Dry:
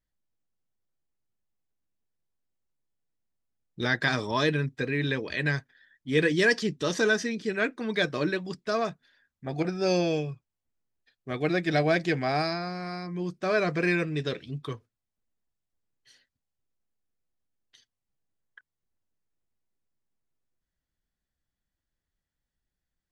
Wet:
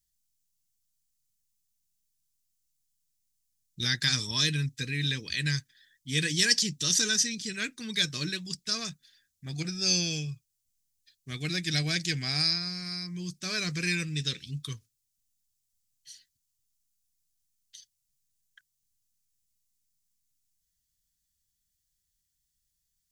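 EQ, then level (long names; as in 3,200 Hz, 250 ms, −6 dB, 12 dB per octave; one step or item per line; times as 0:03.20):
drawn EQ curve 150 Hz 0 dB, 650 Hz −21 dB, 6,200 Hz +15 dB
0.0 dB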